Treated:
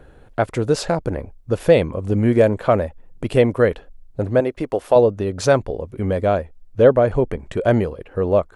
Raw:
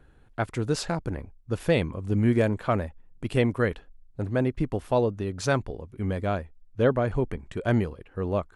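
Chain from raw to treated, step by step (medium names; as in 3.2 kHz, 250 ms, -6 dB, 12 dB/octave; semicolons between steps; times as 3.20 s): 4.40–4.96 s: tone controls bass -13 dB, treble +1 dB; in parallel at +1 dB: compression, threshold -36 dBFS, peak gain reduction 18 dB; on the sum: peaking EQ 550 Hz +8.5 dB 0.93 oct; trim +2.5 dB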